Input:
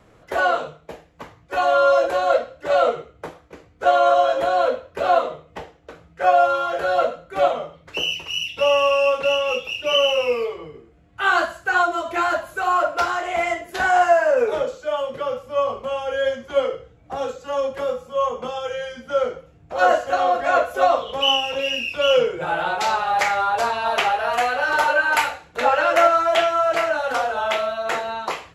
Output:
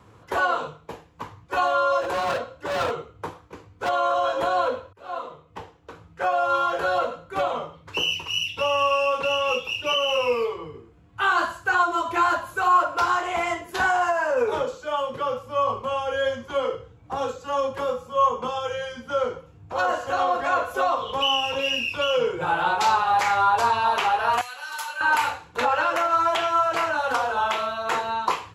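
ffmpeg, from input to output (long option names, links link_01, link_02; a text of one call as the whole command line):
ffmpeg -i in.wav -filter_complex "[0:a]asplit=3[link_01][link_02][link_03];[link_01]afade=type=out:start_time=2:duration=0.02[link_04];[link_02]asoftclip=type=hard:threshold=-21dB,afade=type=in:start_time=2:duration=0.02,afade=type=out:start_time=3.88:duration=0.02[link_05];[link_03]afade=type=in:start_time=3.88:duration=0.02[link_06];[link_04][link_05][link_06]amix=inputs=3:normalize=0,asettb=1/sr,asplit=3[link_07][link_08][link_09];[link_07]atrim=end=24.414[link_10];[link_08]atrim=start=24.41:end=25.01,asetpts=PTS-STARTPTS,afade=type=in:duration=0.004:curve=qsin,afade=type=out:start_time=0.596:duration=0.004:curve=qsin,aderivative[link_11];[link_09]atrim=start=25.006[link_12];[link_10][link_11]acrossfade=duration=0.004:curve1=hsin:curve2=qsin[link_13];[link_13][link_12]acrossfade=duration=0.004:curve1=qsin:curve2=hsin,asplit=2[link_14][link_15];[link_14]atrim=end=4.93,asetpts=PTS-STARTPTS,afade=type=out:start_time=4.926:duration=0.004:curve=hsin[link_16];[link_15]atrim=start=4.93,asetpts=PTS-STARTPTS,afade=type=in:duration=1.56:curve=qsin[link_17];[link_16][link_17]concat=n=2:v=0:a=1,highpass=54,alimiter=limit=-12.5dB:level=0:latency=1:release=105,equalizer=frequency=100:width_type=o:width=0.33:gain=10,equalizer=frequency=630:width_type=o:width=0.33:gain=-8,equalizer=frequency=1000:width_type=o:width=0.33:gain=8,equalizer=frequency=2000:width_type=o:width=0.33:gain=-4" out.wav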